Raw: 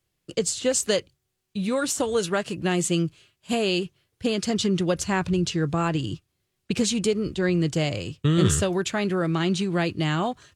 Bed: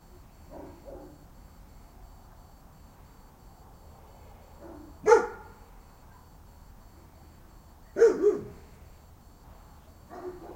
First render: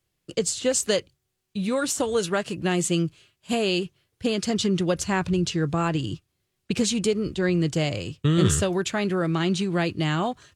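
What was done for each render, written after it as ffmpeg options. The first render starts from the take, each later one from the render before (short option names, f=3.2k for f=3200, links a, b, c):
-af anull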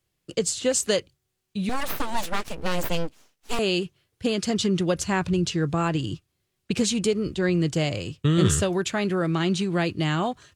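-filter_complex "[0:a]asettb=1/sr,asplit=3[a][b][c];[a]atrim=end=1.694[d];[b]atrim=start=1.69:end=3.59,asetpts=PTS-STARTPTS,afade=t=in:d=0.004:c=qsin,afade=t=out:st=1.896:d=0.004:c=qsin,aeval=exprs='abs(val(0))':c=same[e];[c]atrim=start=3.586[f];[d][e]acrossfade=d=0.004:c1=hsin:c2=qsin[g];[g][f]acrossfade=d=0.004:c1=qsin:c2=hsin"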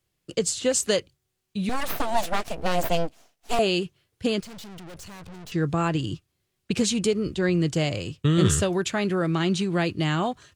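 -filter_complex "[0:a]asettb=1/sr,asplit=3[a][b][c];[a]atrim=end=1.954[d];[b]atrim=start=1.95:end=3.67,asetpts=PTS-STARTPTS,afade=t=in:d=0.004:c=qsin,afade=t=out:st=1.716:d=0.004:c=qsin,equalizer=f=690:w=4.4:g=11[e];[c]atrim=start=3.666[f];[d][e]acrossfade=d=0.004:c1=hsin:c2=qsin[g];[g][f]acrossfade=d=0.004:c1=qsin:c2=hsin,asettb=1/sr,asplit=3[h][i][j];[h]atrim=end=4.404[k];[i]atrim=start=4.4:end=5.52,asetpts=PTS-STARTPTS,afade=t=in:d=0.004:c=qsin,afade=t=out:st=1.116:d=0.004:c=qsin,aeval=exprs='(tanh(112*val(0)+0.7)-tanh(0.7))/112':c=same[l];[j]atrim=start=5.516[m];[k][l]acrossfade=d=0.004:c1=hsin:c2=qsin[n];[n][m]acrossfade=d=0.004:c1=qsin:c2=hsin"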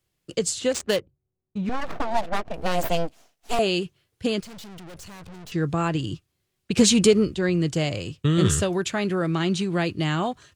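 -filter_complex "[0:a]asettb=1/sr,asplit=3[a][b][c];[a]atrim=end=0.734[d];[b]atrim=start=0.73:end=2.54,asetpts=PTS-STARTPTS,afade=t=in:d=0.004:c=qsin,afade=t=out:st=1.806:d=0.004:c=qsin,adynamicsmooth=sensitivity=3.5:basefreq=630[e];[c]atrim=start=2.536[f];[d][e]acrossfade=d=0.004:c1=hsin:c2=qsin[g];[g][f]acrossfade=d=0.004:c1=qsin:c2=hsin,asplit=3[h][i][j];[h]afade=t=out:st=6.77:d=0.02[k];[i]acontrast=82,afade=t=in:st=6.77:d=0.02,afade=t=out:st=7.24:d=0.02[l];[j]afade=t=in:st=7.24:d=0.02[m];[k][l][m]amix=inputs=3:normalize=0"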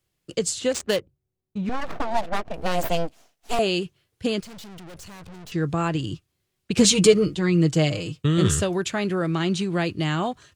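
-filter_complex "[0:a]asettb=1/sr,asplit=3[a][b][c];[a]atrim=end=6.844[d];[b]atrim=start=6.84:end=8.22,asetpts=PTS-STARTPTS,afade=t=in:d=0.004:c=qsin,afade=t=out:st=1.376:d=0.004:c=qsin,aecho=1:1:6.4:0.74,atrim=end_sample=60858[e];[c]atrim=start=8.216[f];[d][e]acrossfade=d=0.004:c1=hsin:c2=qsin[g];[g][f]acrossfade=d=0.004:c1=qsin:c2=hsin"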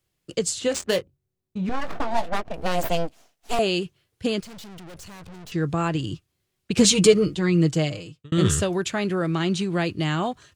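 -filter_complex "[0:a]asettb=1/sr,asplit=3[a][b][c];[a]atrim=end=0.654[d];[b]atrim=start=0.65:end=2.35,asetpts=PTS-STARTPTS,afade=t=in:d=0.004:c=qsin,afade=t=out:st=1.696:d=0.004:c=qsin,asplit=2[e][f];[f]adelay=22,volume=-10dB[g];[e][g]amix=inputs=2:normalize=0,atrim=end_sample=74970[h];[c]atrim=start=2.346[i];[d][h]acrossfade=d=0.004:c1=hsin:c2=qsin[j];[j][i]acrossfade=d=0.004:c1=qsin:c2=hsin,asplit=2[k][l];[k]atrim=end=8.32,asetpts=PTS-STARTPTS,afade=t=out:st=7.63:d=0.69[m];[l]atrim=start=8.32,asetpts=PTS-STARTPTS,afade=t=in:d=0.004:c=hsin[n];[m][n]concat=n=2:v=0:a=1"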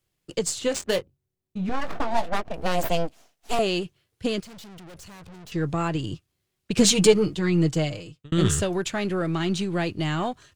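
-af "aeval=exprs='if(lt(val(0),0),0.708*val(0),val(0))':c=same"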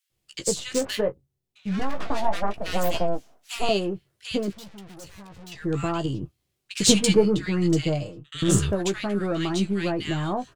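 -filter_complex "[0:a]asplit=2[a][b];[b]adelay=15,volume=-8.5dB[c];[a][c]amix=inputs=2:normalize=0,acrossover=split=1500[d][e];[d]adelay=100[f];[f][e]amix=inputs=2:normalize=0"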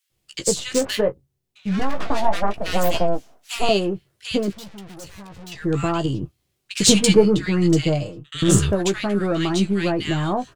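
-af "volume=4.5dB,alimiter=limit=-1dB:level=0:latency=1"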